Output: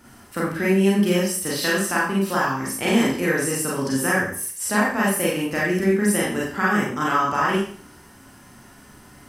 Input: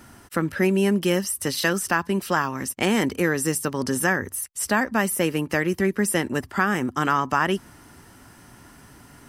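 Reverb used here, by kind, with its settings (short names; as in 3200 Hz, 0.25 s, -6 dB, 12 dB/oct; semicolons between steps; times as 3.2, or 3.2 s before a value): Schroeder reverb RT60 0.49 s, combs from 30 ms, DRR -5.5 dB; gain -5 dB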